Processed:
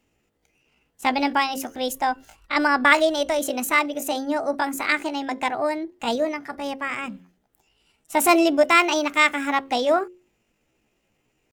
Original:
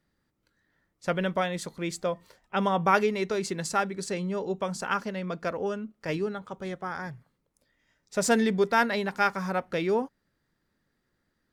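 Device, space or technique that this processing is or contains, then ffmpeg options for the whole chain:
chipmunk voice: -filter_complex "[0:a]bandreject=frequency=60:width_type=h:width=6,bandreject=frequency=120:width_type=h:width=6,bandreject=frequency=180:width_type=h:width=6,bandreject=frequency=240:width_type=h:width=6,bandreject=frequency=300:width_type=h:width=6,bandreject=frequency=360:width_type=h:width=6,asplit=3[link_01][link_02][link_03];[link_01]afade=type=out:start_time=1.78:duration=0.02[link_04];[link_02]asubboost=boost=5:cutoff=56,afade=type=in:start_time=1.78:duration=0.02,afade=type=out:start_time=3.4:duration=0.02[link_05];[link_03]afade=type=in:start_time=3.4:duration=0.02[link_06];[link_04][link_05][link_06]amix=inputs=3:normalize=0,asetrate=66075,aresample=44100,atempo=0.66742,volume=6.5dB"

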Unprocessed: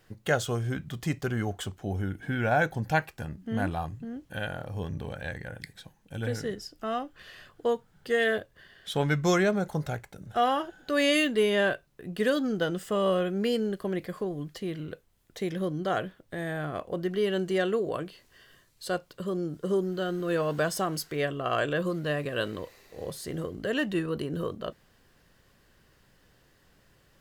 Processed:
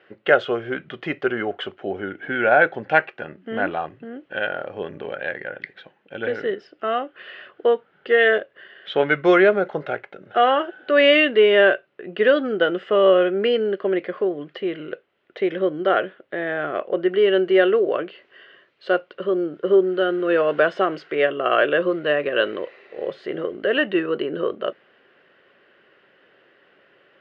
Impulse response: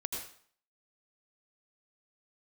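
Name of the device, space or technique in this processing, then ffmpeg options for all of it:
phone earpiece: -af "highpass=340,equalizer=frequency=380:width_type=q:width=4:gain=7,equalizer=frequency=570:width_type=q:width=4:gain=5,equalizer=frequency=950:width_type=q:width=4:gain=-4,equalizer=frequency=1400:width_type=q:width=4:gain=5,equalizer=frequency=2000:width_type=q:width=4:gain=3,equalizer=frequency=2900:width_type=q:width=4:gain=5,lowpass=frequency=3000:width=0.5412,lowpass=frequency=3000:width=1.3066,volume=7dB"

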